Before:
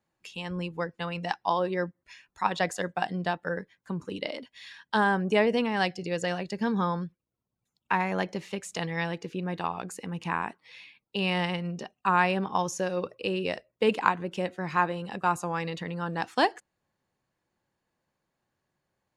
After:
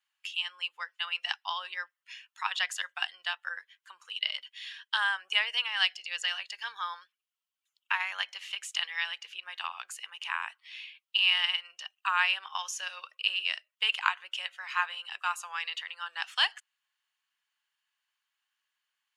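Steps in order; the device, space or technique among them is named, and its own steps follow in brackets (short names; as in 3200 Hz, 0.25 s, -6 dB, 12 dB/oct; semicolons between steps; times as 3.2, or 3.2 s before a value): headphones lying on a table (HPF 1200 Hz 24 dB/oct; bell 3000 Hz +11.5 dB 0.36 oct)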